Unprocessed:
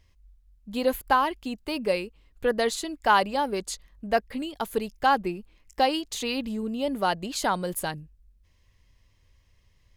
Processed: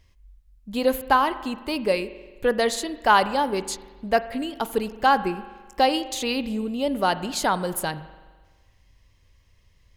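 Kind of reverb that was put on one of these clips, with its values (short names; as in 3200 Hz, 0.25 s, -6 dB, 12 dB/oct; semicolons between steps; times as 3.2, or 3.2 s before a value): spring tank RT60 1.4 s, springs 42 ms, chirp 50 ms, DRR 13.5 dB; gain +3 dB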